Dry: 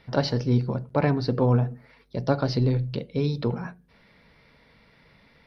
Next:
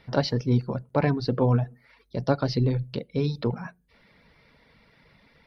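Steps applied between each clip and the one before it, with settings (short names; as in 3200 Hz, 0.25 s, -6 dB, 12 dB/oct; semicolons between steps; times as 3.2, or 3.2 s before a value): reverb removal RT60 0.51 s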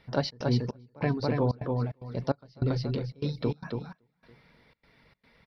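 on a send: feedback echo 0.28 s, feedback 26%, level -4 dB; on the sum: step gate "xxx.xxx...xxxxx." 149 bpm -24 dB; gain -4 dB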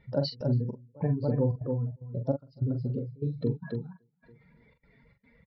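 spectral contrast raised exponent 2.1; doubler 43 ms -7.5 dB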